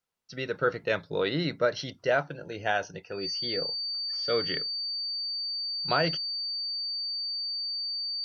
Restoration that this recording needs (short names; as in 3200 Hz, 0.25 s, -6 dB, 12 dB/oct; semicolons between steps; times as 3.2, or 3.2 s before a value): notch 4600 Hz, Q 30